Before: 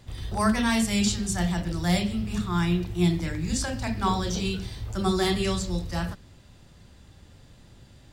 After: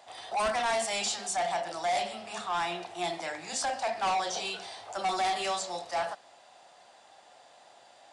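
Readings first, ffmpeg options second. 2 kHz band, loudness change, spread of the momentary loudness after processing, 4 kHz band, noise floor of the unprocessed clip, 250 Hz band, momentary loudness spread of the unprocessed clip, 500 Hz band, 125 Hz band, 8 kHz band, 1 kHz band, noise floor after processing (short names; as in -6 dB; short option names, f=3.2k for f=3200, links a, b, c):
-2.0 dB, -5.0 dB, 8 LU, -2.5 dB, -53 dBFS, -20.5 dB, 8 LU, -2.0 dB, -26.5 dB, -2.5 dB, +2.5 dB, -58 dBFS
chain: -af "highpass=f=720:t=q:w=5.3,asoftclip=type=tanh:threshold=-25.5dB,aresample=22050,aresample=44100"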